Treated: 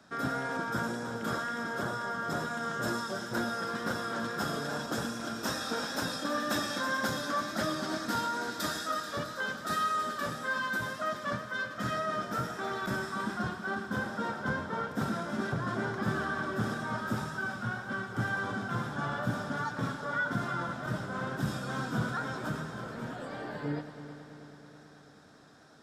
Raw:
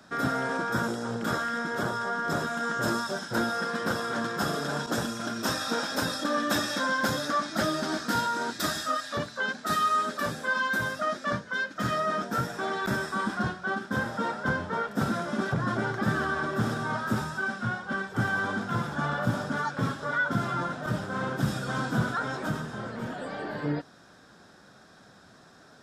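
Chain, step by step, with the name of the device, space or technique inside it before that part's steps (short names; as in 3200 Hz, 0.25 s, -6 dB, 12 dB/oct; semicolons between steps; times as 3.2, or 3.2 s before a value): multi-head tape echo (multi-head echo 0.108 s, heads first and third, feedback 73%, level -14 dB; wow and flutter 20 cents); gain -5 dB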